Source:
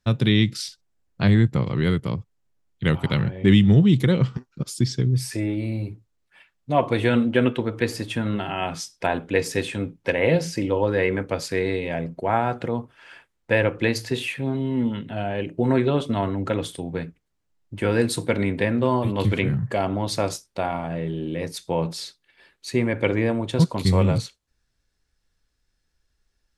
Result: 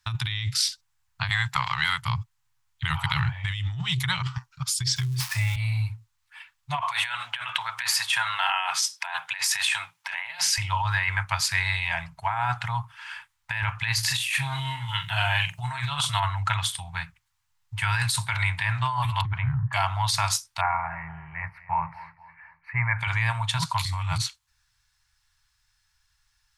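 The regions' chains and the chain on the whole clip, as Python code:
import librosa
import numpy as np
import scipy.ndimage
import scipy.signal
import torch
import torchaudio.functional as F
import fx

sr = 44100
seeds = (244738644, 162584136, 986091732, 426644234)

y = fx.chain(x, sr, fx.highpass(hz=300.0, slope=12),
    fx.transient(attack_db=10, sustain_db=6), at=(1.29, 2.02))
y = fx.chain(y, sr, fx.dead_time(dead_ms=0.066),
    fx.band_squash(depth_pct=70), at=(4.96, 5.56))
y = fx.chain(y, sr, fx.highpass(hz=520.0, slope=12),
    fx.over_compress(threshold_db=-32.0, ratio=-1.0), at=(6.79, 10.58))
y = fx.chain(y, sr, fx.high_shelf(hz=3700.0, db=11.0),
    fx.over_compress(threshold_db=-25.0, ratio=-1.0),
    fx.doubler(ms=42.0, db=-9.0), at=(14.03, 16.2))
y = fx.chain(y, sr, fx.lowpass(hz=1000.0, slope=12),
    fx.peak_eq(hz=490.0, db=-4.5, octaves=0.94), at=(19.21, 19.73))
y = fx.chain(y, sr, fx.ellip_lowpass(hz=2200.0, order=4, stop_db=40),
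    fx.echo_feedback(ms=242, feedback_pct=40, wet_db=-18), at=(20.61, 22.99))
y = scipy.signal.sosfilt(scipy.signal.ellip(3, 1.0, 40, [120.0, 910.0], 'bandstop', fs=sr, output='sos'), y)
y = fx.low_shelf(y, sr, hz=100.0, db=-11.5)
y = fx.over_compress(y, sr, threshold_db=-31.0, ratio=-1.0)
y = y * 10.0 ** (6.5 / 20.0)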